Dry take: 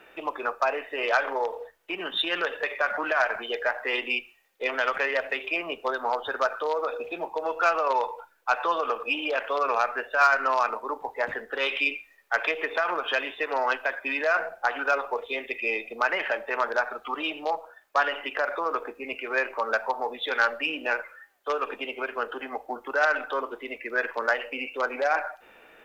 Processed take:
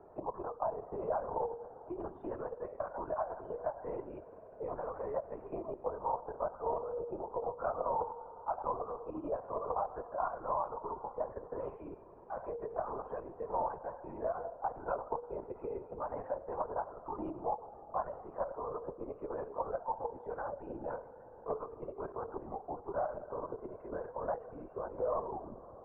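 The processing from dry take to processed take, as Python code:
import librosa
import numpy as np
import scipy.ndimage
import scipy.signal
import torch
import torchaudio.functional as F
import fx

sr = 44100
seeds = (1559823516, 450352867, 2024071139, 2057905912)

y = fx.tape_stop_end(x, sr, length_s=0.89)
y = scipy.signal.sosfilt(scipy.signal.cheby1(4, 1.0, 1000.0, 'lowpass', fs=sr, output='sos'), y)
y = fx.level_steps(y, sr, step_db=9)
y = fx.rev_spring(y, sr, rt60_s=4.0, pass_ms=(50,), chirp_ms=45, drr_db=15.5)
y = fx.lpc_vocoder(y, sr, seeds[0], excitation='whisper', order=16)
y = fx.band_squash(y, sr, depth_pct=40)
y = y * librosa.db_to_amplitude(-4.5)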